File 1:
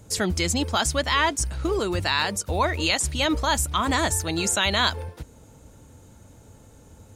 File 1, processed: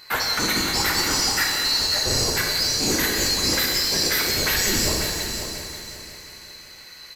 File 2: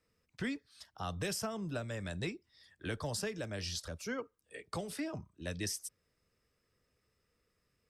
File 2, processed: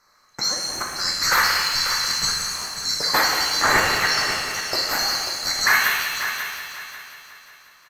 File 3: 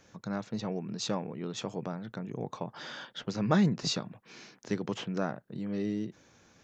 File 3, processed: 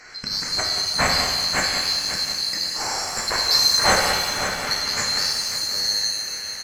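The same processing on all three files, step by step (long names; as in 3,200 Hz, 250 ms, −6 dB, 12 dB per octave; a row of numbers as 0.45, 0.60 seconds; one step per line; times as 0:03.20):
neighbouring bands swapped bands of 4,000 Hz
high shelf with overshoot 2,400 Hz −8 dB, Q 3
in parallel at −2 dB: downward compressor, threshold −40 dBFS
on the sum: soft clipping −28.5 dBFS
on a send: echo machine with several playback heads 180 ms, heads first and third, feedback 47%, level −10 dB
on the sum: downsampling to 32,000 Hz
reverb with rising layers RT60 1.5 s, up +7 semitones, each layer −8 dB, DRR −0.5 dB
loudness normalisation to −20 LKFS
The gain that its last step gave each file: +8.0, +17.5, +15.0 decibels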